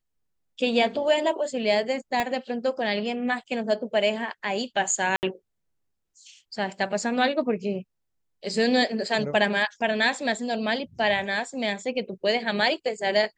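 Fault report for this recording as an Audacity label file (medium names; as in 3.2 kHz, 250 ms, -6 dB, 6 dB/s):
2.200000	2.200000	pop -11 dBFS
5.160000	5.230000	dropout 69 ms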